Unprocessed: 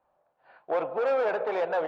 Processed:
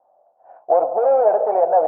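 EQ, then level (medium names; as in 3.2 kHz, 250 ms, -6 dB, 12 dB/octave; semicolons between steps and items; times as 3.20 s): resonant low-pass 710 Hz, resonance Q 4.9; bass shelf 96 Hz -11 dB; bass shelf 220 Hz -10.5 dB; +5.0 dB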